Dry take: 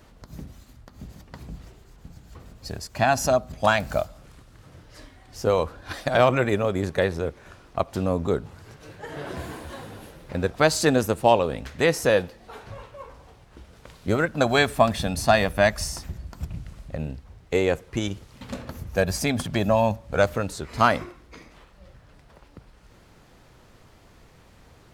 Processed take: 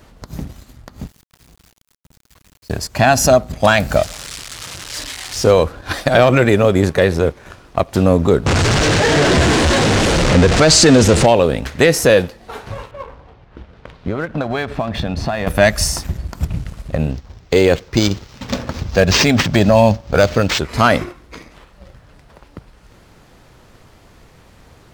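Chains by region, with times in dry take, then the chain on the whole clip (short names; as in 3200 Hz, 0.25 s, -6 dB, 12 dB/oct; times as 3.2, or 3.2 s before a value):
1.07–2.7 passive tone stack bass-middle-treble 5-5-5 + compressor 4:1, threshold -55 dBFS + companded quantiser 4-bit
3.96–5.51 switching spikes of -21 dBFS + air absorption 81 m
8.46–11.26 zero-crossing step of -20.5 dBFS + LPF 7800 Hz 24 dB/oct
12.91–15.47 air absorption 230 m + compressor 10:1, threshold -28 dBFS
17.11–20.59 band shelf 7500 Hz +11.5 dB 1.3 oct + decimation joined by straight lines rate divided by 4×
whole clip: dynamic EQ 980 Hz, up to -5 dB, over -33 dBFS, Q 1.6; sample leveller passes 1; maximiser +9.5 dB; gain -1 dB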